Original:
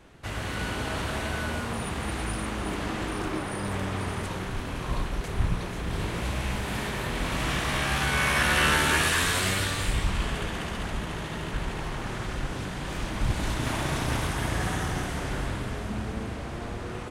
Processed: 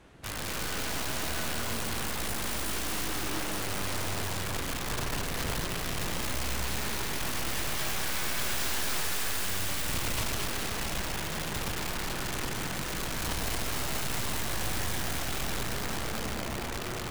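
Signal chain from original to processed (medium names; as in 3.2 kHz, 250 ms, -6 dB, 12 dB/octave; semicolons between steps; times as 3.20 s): 2.46–3.08 s: treble shelf 3.1 kHz +11.5 dB; Chebyshev shaper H 4 -18 dB, 7 -30 dB, 8 -22 dB, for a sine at -9.5 dBFS; peak limiter -17 dBFS, peak gain reduction 7.5 dB; integer overflow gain 29 dB; on a send: two-band feedback delay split 800 Hz, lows 137 ms, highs 222 ms, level -3.5 dB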